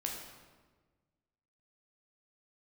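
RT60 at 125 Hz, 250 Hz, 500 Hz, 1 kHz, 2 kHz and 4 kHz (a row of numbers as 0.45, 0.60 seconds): 1.9, 1.7, 1.5, 1.3, 1.1, 0.95 seconds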